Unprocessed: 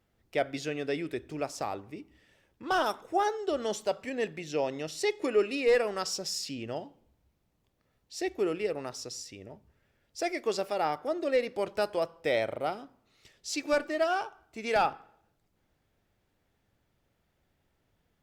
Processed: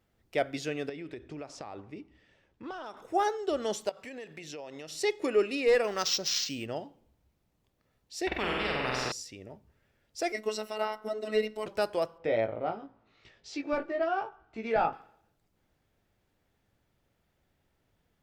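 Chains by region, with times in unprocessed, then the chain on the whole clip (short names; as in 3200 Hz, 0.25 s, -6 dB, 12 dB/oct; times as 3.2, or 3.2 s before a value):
0.89–2.97 compressor 10:1, threshold -36 dBFS + air absorption 88 m
3.89–4.91 low shelf 380 Hz -6 dB + compressor 10:1, threshold -38 dBFS
5.84–6.67 steep low-pass 8700 Hz 48 dB/oct + high shelf 2400 Hz +10.5 dB + decimation joined by straight lines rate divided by 4×
8.27–9.12 air absorption 490 m + flutter echo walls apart 8 m, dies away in 0.98 s + spectral compressor 4:1
10.32–11.66 ripple EQ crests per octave 2, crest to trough 12 dB + robotiser 215 Hz
12.18–14.93 tape spacing loss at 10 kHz 33 dB + doubler 18 ms -4 dB + mismatched tape noise reduction encoder only
whole clip: dry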